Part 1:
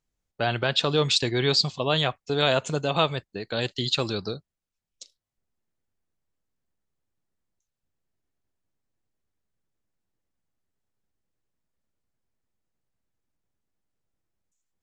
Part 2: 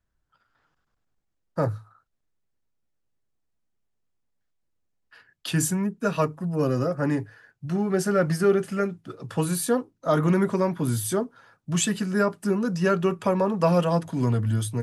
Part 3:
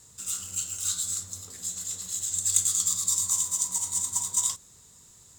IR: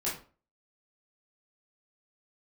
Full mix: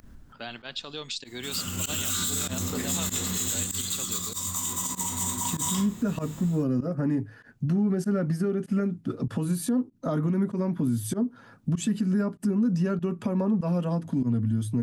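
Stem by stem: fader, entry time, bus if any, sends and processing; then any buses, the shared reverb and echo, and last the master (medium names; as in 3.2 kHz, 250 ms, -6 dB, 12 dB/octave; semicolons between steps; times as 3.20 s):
-12.0 dB, 0.00 s, no send, tilt EQ +3 dB/octave; compression 3:1, threshold -21 dBFS, peak gain reduction 8.5 dB
-0.5 dB, 0.00 s, no send, upward compressor, threshold -34 dBFS; bass shelf 330 Hz +9 dB; compression 12:1, threshold -25 dBFS, peak gain reduction 15 dB; auto duck -21 dB, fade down 1.45 s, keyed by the first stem
+1.5 dB, 1.25 s, send -6.5 dB, level rider gain up to 12.5 dB; high-order bell 7 kHz -12 dB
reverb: on, RT60 0.40 s, pre-delay 14 ms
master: peaking EQ 240 Hz +11.5 dB 0.57 oct; volume shaper 97 bpm, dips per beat 1, -22 dB, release 76 ms; peak limiter -18 dBFS, peak gain reduction 10 dB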